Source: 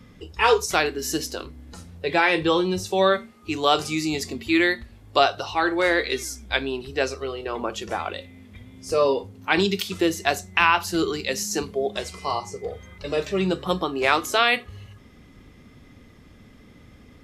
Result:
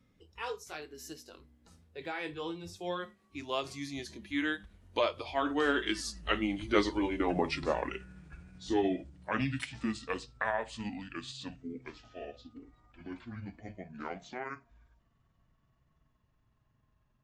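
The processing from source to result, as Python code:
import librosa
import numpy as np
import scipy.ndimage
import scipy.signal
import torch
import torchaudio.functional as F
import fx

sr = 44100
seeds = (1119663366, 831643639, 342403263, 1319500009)

y = fx.pitch_glide(x, sr, semitones=-11.0, runs='starting unshifted')
y = fx.doppler_pass(y, sr, speed_mps=13, closest_m=9.5, pass_at_s=7.1)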